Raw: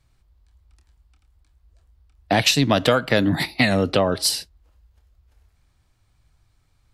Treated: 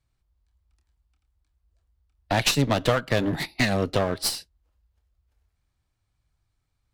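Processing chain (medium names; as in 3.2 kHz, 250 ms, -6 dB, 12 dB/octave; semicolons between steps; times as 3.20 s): one-sided clip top -26 dBFS; upward expansion 1.5:1, over -40 dBFS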